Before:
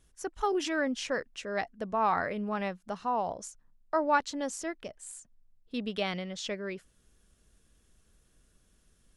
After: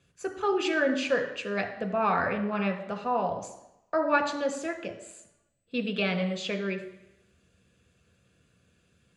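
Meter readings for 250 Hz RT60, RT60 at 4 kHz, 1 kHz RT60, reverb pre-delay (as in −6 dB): 0.85 s, 0.90 s, 0.85 s, 3 ms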